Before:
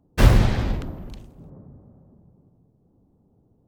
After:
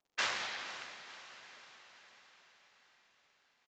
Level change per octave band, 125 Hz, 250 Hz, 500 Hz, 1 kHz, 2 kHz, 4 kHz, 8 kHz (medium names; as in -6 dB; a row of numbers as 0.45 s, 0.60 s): under -40 dB, -34.5 dB, -21.5 dB, -11.0 dB, -5.5 dB, -4.5 dB, -6.5 dB